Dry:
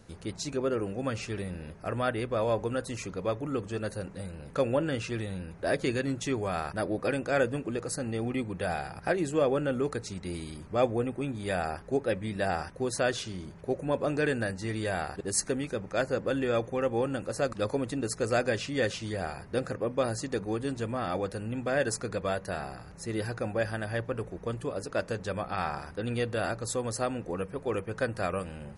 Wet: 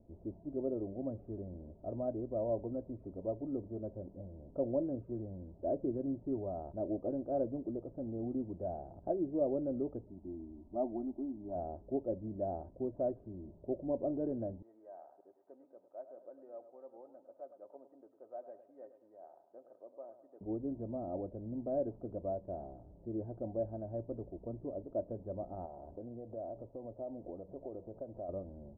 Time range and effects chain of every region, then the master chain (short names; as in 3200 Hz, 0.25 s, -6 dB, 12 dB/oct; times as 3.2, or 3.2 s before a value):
10.1–11.56 fixed phaser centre 490 Hz, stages 6 + dynamic EQ 1700 Hz, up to +7 dB, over -48 dBFS, Q 0.87
14.62–20.41 HPF 1200 Hz + feedback echo 0.104 s, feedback 43%, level -11.5 dB
25.65–28.29 compressor 4:1, threshold -39 dBFS + bell 660 Hz +8 dB 1.5 oct
whole clip: Chebyshev low-pass 720 Hz, order 4; comb 3.2 ms, depth 51%; gain -7 dB